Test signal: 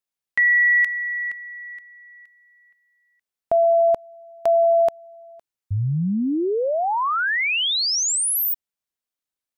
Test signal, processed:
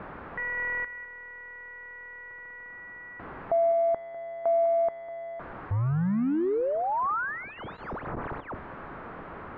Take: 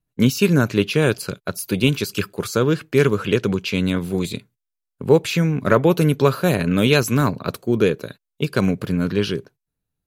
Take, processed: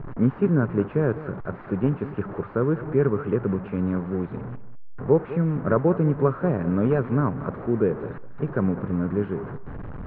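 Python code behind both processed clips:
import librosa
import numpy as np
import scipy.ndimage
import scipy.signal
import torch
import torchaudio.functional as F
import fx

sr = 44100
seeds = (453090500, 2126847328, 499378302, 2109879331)

y = fx.delta_mod(x, sr, bps=32000, step_db=-23.0)
y = fx.peak_eq(y, sr, hz=700.0, db=-2.5, octaves=0.77)
y = np.repeat(scipy.signal.resample_poly(y, 1, 4), 4)[:len(y)]
y = scipy.signal.sosfilt(scipy.signal.butter(4, 1400.0, 'lowpass', fs=sr, output='sos'), y)
y = y + 10.0 ** (-15.0 / 20.0) * np.pad(y, (int(200 * sr / 1000.0), 0))[:len(y)]
y = y * librosa.db_to_amplitude(-4.0)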